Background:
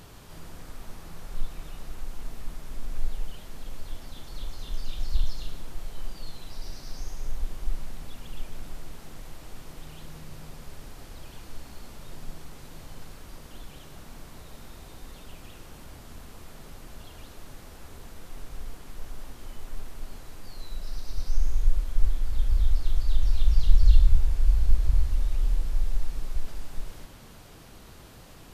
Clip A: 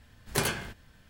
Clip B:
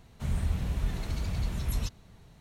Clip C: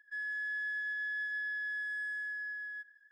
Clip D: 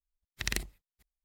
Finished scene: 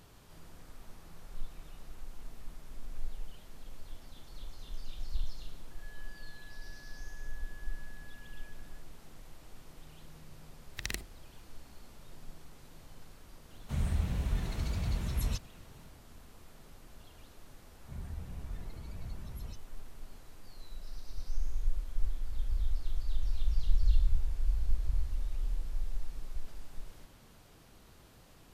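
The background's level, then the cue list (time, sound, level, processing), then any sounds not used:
background -9.5 dB
5.71 add C -4 dB + compressor 3:1, threshold -58 dBFS
10.38 add D -5 dB
13.49 add B -2 dB
17.67 add B -13 dB + loudest bins only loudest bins 64
not used: A

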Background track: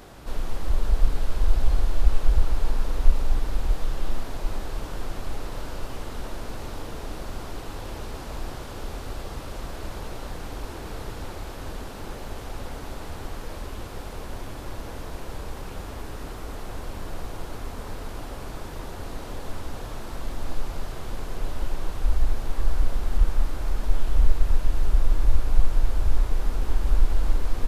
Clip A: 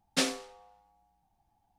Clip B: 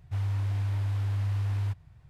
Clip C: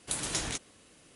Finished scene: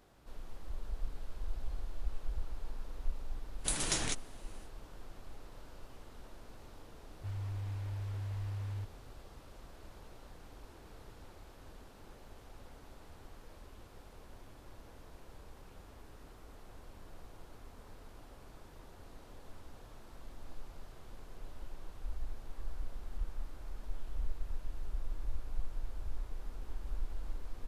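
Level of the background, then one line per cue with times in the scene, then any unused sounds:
background track -18.5 dB
3.57 add C -1 dB, fades 0.10 s
7.12 add B -10.5 dB
not used: A

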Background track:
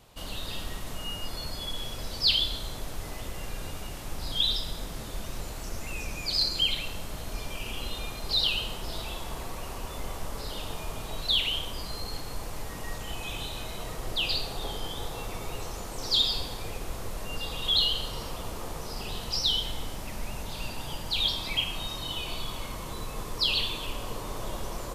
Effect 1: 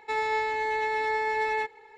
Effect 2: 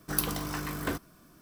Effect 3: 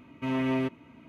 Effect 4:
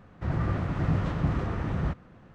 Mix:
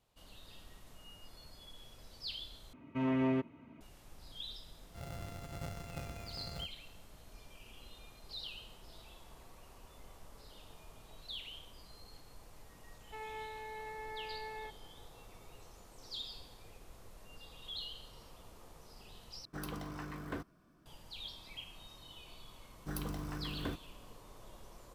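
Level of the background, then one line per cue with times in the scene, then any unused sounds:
background track -19.5 dB
2.73 replace with 3 -3.5 dB + high shelf 2900 Hz -11.5 dB
4.73 add 4 -18 dB + sample sorter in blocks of 64 samples
13.04 add 1 -17 dB + high shelf 3600 Hz -9 dB
19.45 replace with 2 -8.5 dB + LPF 2100 Hz 6 dB/oct
22.78 add 2 -10.5 dB + tilt -2 dB/oct

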